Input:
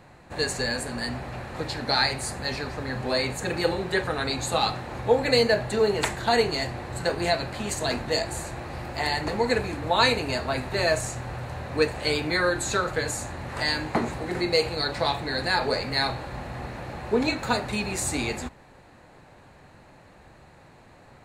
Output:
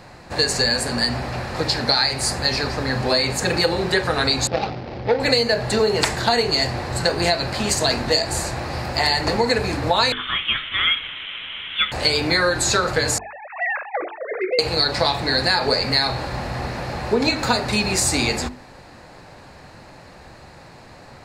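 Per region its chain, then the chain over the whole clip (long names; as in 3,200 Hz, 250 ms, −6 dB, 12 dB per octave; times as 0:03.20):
0:04.47–0:05.20: running median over 41 samples + low-pass filter 4,500 Hz 24 dB per octave + low-shelf EQ 190 Hz −6 dB
0:10.12–0:11.92: high-pass filter 740 Hz + voice inversion scrambler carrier 3,900 Hz
0:13.18–0:14.59: three sine waves on the formant tracks + downward compressor, threshold −27 dBFS
whole clip: parametric band 5,000 Hz +10 dB 0.45 octaves; mains-hum notches 50/100/150/200/250/300/350/400/450 Hz; downward compressor 6 to 1, threshold −23 dBFS; level +8.5 dB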